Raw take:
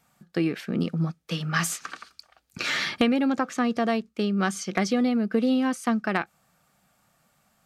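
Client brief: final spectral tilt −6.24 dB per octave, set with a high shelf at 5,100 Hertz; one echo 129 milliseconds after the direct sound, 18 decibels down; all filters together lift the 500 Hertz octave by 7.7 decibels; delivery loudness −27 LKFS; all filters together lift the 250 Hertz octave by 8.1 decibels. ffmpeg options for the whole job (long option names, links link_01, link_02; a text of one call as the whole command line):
ffmpeg -i in.wav -af "equalizer=frequency=250:width_type=o:gain=7.5,equalizer=frequency=500:width_type=o:gain=7,highshelf=frequency=5100:gain=-7.5,aecho=1:1:129:0.126,volume=-8dB" out.wav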